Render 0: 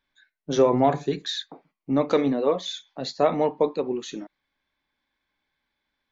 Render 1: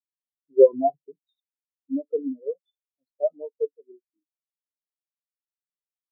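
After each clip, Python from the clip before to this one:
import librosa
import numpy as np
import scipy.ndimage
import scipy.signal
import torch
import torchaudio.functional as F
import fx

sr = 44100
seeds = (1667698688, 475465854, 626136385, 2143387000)

y = fx.spectral_expand(x, sr, expansion=4.0)
y = y * librosa.db_to_amplitude(5.0)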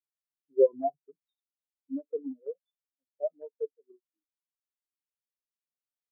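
y = fx.transient(x, sr, attack_db=0, sustain_db=-5)
y = y * librosa.db_to_amplitude(-7.5)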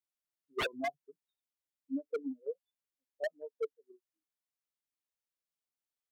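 y = 10.0 ** (-26.0 / 20.0) * (np.abs((x / 10.0 ** (-26.0 / 20.0) + 3.0) % 4.0 - 2.0) - 1.0)
y = y * librosa.db_to_amplitude(-1.5)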